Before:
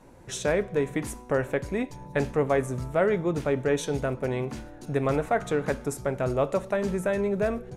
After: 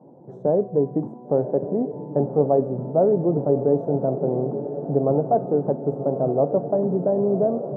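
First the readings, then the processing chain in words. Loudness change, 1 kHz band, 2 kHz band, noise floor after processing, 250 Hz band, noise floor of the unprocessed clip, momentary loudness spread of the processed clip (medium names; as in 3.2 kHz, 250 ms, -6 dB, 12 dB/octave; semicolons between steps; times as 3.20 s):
+5.5 dB, +4.0 dB, under -25 dB, -42 dBFS, +6.0 dB, -46 dBFS, 6 LU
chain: elliptic band-pass 140–780 Hz, stop band 50 dB; on a send: echo that smears into a reverb 1078 ms, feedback 56%, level -10 dB; on the sum: trim +6 dB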